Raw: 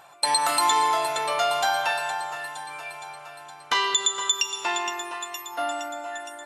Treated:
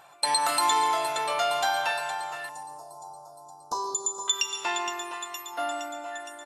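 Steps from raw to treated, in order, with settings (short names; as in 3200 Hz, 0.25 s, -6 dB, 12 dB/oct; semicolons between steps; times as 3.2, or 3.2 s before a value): 2.49–4.28 Chebyshev band-stop 980–5200 Hz, order 3; feedback echo 0.14 s, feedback 34%, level -16 dB; gain -2.5 dB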